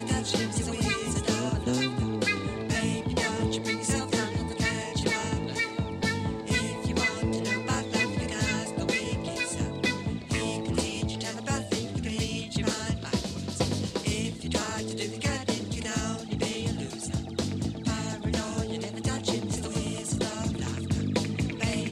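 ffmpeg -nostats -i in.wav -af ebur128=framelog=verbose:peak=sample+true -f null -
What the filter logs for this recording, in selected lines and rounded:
Integrated loudness:
  I:         -29.6 LUFS
  Threshold: -39.6 LUFS
Loudness range:
  LRA:         2.9 LU
  Threshold: -49.7 LUFS
  LRA low:   -31.1 LUFS
  LRA high:  -28.3 LUFS
Sample peak:
  Peak:      -11.2 dBFS
True peak:
  Peak:      -11.2 dBFS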